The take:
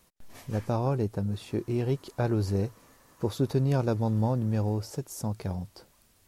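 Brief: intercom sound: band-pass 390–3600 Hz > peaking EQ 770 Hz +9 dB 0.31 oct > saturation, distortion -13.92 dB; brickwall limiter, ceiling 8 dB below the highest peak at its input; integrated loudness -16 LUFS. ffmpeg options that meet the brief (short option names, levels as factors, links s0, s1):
-af "alimiter=limit=0.0668:level=0:latency=1,highpass=390,lowpass=3600,equalizer=f=770:t=o:w=0.31:g=9,asoftclip=threshold=0.0335,volume=17.8"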